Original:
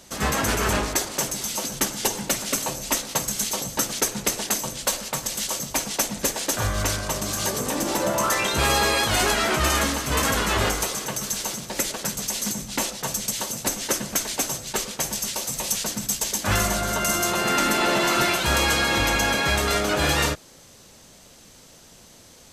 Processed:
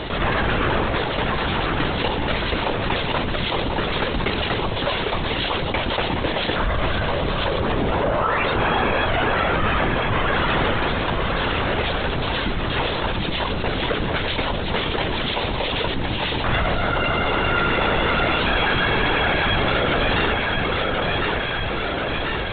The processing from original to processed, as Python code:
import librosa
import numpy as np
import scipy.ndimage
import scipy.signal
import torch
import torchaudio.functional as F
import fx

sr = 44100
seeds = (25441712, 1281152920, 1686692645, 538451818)

y = fx.lowpass(x, sr, hz=2700.0, slope=12, at=(7.89, 10.32))
y = fx.echo_feedback(y, sr, ms=1046, feedback_pct=43, wet_db=-8.0)
y = fx.lpc_vocoder(y, sr, seeds[0], excitation='whisper', order=16)
y = fx.env_flatten(y, sr, amount_pct=70)